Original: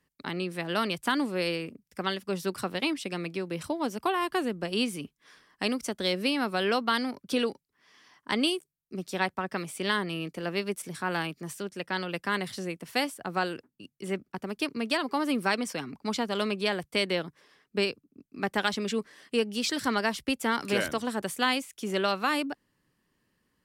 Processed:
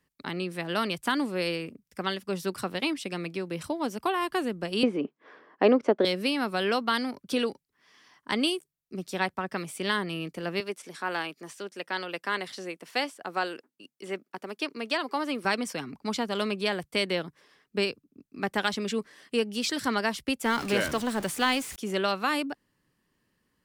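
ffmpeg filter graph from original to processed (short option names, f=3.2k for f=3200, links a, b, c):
-filter_complex "[0:a]asettb=1/sr,asplit=3[a][b][c];[a]atrim=end=4.834[d];[b]atrim=start=4.83:end=6.05,asetpts=PTS-STARTPTS,afade=t=in:d=0.004:c=qsin,afade=t=out:st=1.216:d=0.004:c=qsin,highpass=230,lowpass=2.4k,equalizer=f=480:t=o:w=2.6:g=14[e];[c]atrim=start=6.046[f];[d][e]acrossfade=d=0.004:c1=hsin:c2=qsin[g];[g][f]acrossfade=d=0.004:c1=qsin:c2=hsin,asettb=1/sr,asplit=3[h][i][j];[h]atrim=end=10.604[k];[i]atrim=start=10.6:end=15.45,asetpts=PTS-STARTPTS,afade=t=in:d=0.004:c=qsin,afade=t=out:st=4.846:d=0.004:c=qsin,highpass=320,acrossover=split=7400[l][m];[m]acompressor=threshold=-57dB:ratio=4:attack=1:release=60[n];[l][n]amix=inputs=2:normalize=0[o];[j]atrim=start=15.446[p];[k][o]acrossfade=d=0.004:c1=hsin:c2=qsin[q];[q][p]acrossfade=d=0.004:c1=qsin:c2=hsin,asettb=1/sr,asplit=3[r][s][t];[r]atrim=end=20.454[u];[s]atrim=start=20.45:end=21.76,asetpts=PTS-STARTPTS,afade=t=in:d=0.004:c=qsin,afade=t=out:st=1.306:d=0.004:c=qsin,aeval=exprs='val(0)+0.5*0.02*sgn(val(0))':c=same,highshelf=f=10k:g=-4.5[v];[t]atrim=start=21.756[w];[u][v]acrossfade=d=0.004:c1=hsin:c2=qsin[x];[x][w]acrossfade=d=0.004:c1=qsin:c2=hsin"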